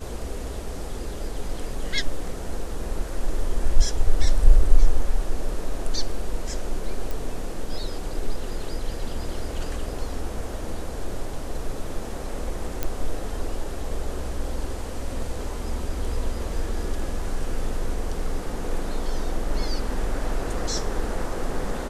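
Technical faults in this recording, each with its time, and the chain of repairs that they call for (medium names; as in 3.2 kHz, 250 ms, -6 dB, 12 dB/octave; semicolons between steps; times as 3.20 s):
7.11 s: pop
12.83 s: pop -10 dBFS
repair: de-click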